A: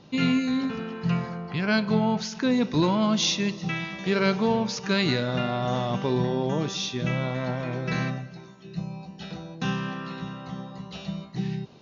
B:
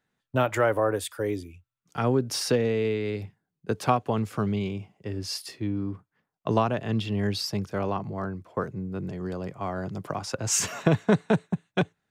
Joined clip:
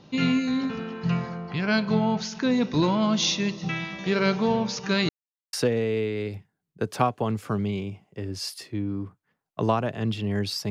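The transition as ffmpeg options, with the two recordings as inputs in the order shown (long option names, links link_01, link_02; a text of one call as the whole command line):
ffmpeg -i cue0.wav -i cue1.wav -filter_complex "[0:a]apad=whole_dur=10.7,atrim=end=10.7,asplit=2[link_01][link_02];[link_01]atrim=end=5.09,asetpts=PTS-STARTPTS,afade=type=out:start_time=5.086:duration=0.004:curve=hsin[link_03];[link_02]atrim=start=5.09:end=5.53,asetpts=PTS-STARTPTS,volume=0[link_04];[1:a]atrim=start=2.41:end=7.58,asetpts=PTS-STARTPTS,afade=type=in:duration=0.004:curve=hsin[link_05];[link_03][link_04][link_05]concat=n=3:v=0:a=1" out.wav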